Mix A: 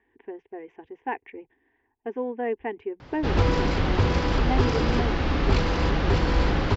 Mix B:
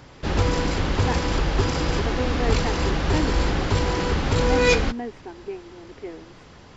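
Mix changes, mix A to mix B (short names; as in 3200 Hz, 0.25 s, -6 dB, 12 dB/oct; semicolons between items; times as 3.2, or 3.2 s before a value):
background: entry -3.00 s; master: remove running mean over 5 samples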